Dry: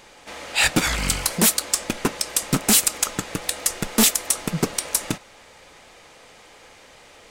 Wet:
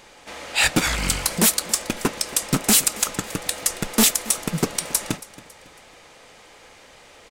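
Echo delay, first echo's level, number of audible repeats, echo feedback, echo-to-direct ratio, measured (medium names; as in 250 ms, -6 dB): 276 ms, -19.0 dB, 2, 39%, -18.5 dB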